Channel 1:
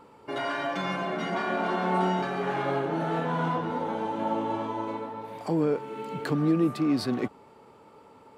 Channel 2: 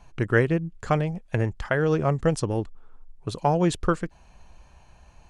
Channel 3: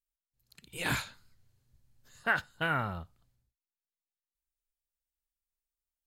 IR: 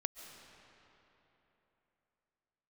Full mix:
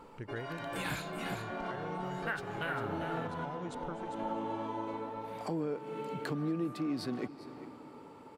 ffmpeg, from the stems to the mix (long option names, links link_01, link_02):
-filter_complex "[0:a]volume=-3dB,asplit=3[link_01][link_02][link_03];[link_02]volume=-9dB[link_04];[link_03]volume=-19.5dB[link_05];[1:a]volume=-17dB,asplit=3[link_06][link_07][link_08];[link_07]volume=-7dB[link_09];[2:a]volume=0.5dB,asplit=2[link_10][link_11];[link_11]volume=-7.5dB[link_12];[link_08]apad=whole_len=369284[link_13];[link_01][link_13]sidechaincompress=threshold=-54dB:ratio=4:attack=16:release=213[link_14];[3:a]atrim=start_sample=2205[link_15];[link_04][link_15]afir=irnorm=-1:irlink=0[link_16];[link_05][link_09][link_12]amix=inputs=3:normalize=0,aecho=0:1:399:1[link_17];[link_14][link_06][link_10][link_16][link_17]amix=inputs=5:normalize=0,acompressor=threshold=-39dB:ratio=2"